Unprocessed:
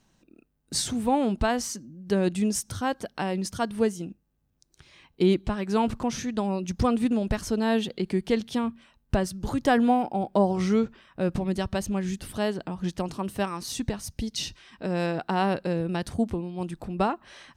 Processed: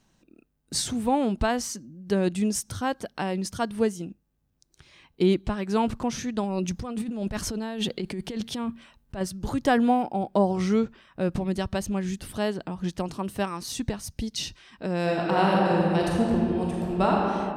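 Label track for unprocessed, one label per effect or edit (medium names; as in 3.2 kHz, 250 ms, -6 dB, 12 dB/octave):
6.430000	9.210000	compressor with a negative ratio -30 dBFS
15.010000	17.140000	reverb throw, RT60 2.4 s, DRR -3.5 dB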